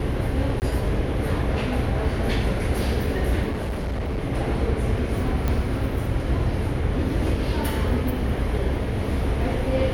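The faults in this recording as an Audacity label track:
0.600000	0.620000	drop-out 19 ms
3.510000	4.190000	clipping −23.5 dBFS
5.480000	5.480000	click −12 dBFS

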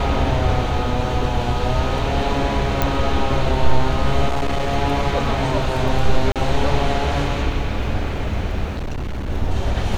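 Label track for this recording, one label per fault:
2.820000	2.820000	click −4 dBFS
4.280000	4.740000	clipping −16 dBFS
6.320000	6.360000	drop-out 37 ms
8.740000	9.300000	clipping −21.5 dBFS

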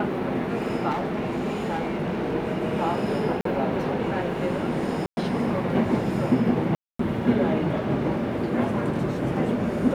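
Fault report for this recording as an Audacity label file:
0.900000	2.350000	clipping −23 dBFS
3.410000	3.450000	drop-out 43 ms
5.060000	5.170000	drop-out 110 ms
6.750000	6.990000	drop-out 244 ms

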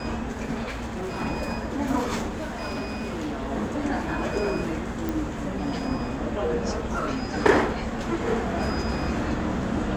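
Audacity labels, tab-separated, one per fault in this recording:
0.670000	1.220000	clipping −28 dBFS
2.270000	3.510000	clipping −27 dBFS
5.090000	5.090000	click

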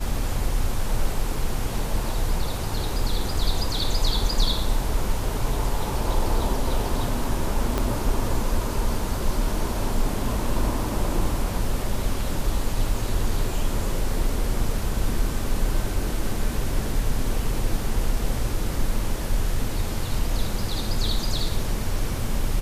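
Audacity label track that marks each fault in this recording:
7.780000	7.780000	click −10 dBFS

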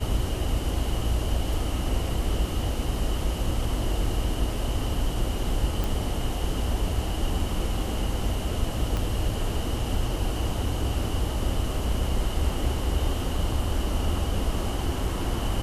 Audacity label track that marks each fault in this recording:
5.840000	5.840000	click
8.970000	8.970000	click

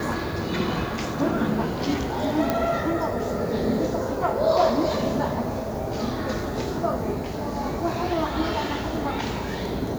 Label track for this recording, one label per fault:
2.500000	2.500000	click −9 dBFS

